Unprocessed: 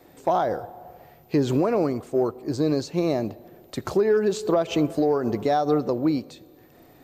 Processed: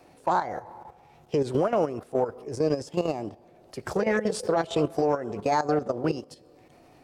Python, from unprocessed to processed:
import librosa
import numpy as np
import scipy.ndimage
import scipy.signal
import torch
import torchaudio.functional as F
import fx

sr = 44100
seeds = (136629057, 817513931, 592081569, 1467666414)

y = fx.level_steps(x, sr, step_db=11)
y = fx.formant_shift(y, sr, semitones=3)